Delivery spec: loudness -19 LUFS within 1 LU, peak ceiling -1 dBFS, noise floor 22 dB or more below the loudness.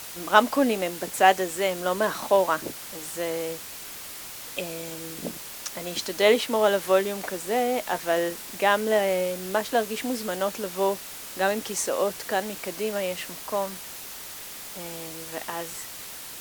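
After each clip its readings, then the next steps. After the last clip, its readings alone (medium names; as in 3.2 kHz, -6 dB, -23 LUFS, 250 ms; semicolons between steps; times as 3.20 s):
noise floor -40 dBFS; noise floor target -49 dBFS; loudness -26.5 LUFS; peak level -3.5 dBFS; loudness target -19.0 LUFS
-> noise reduction 9 dB, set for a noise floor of -40 dBFS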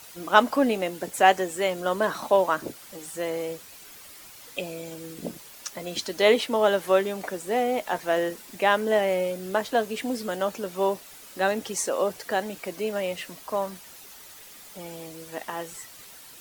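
noise floor -47 dBFS; noise floor target -48 dBFS
-> noise reduction 6 dB, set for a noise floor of -47 dBFS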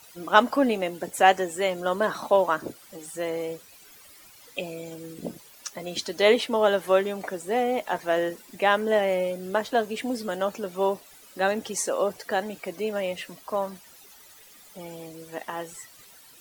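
noise floor -51 dBFS; loudness -26.0 LUFS; peak level -3.5 dBFS; loudness target -19.0 LUFS
-> trim +7 dB; peak limiter -1 dBFS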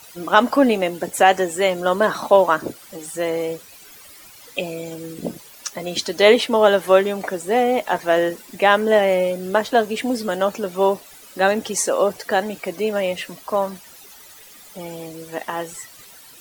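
loudness -19.5 LUFS; peak level -1.0 dBFS; noise floor -44 dBFS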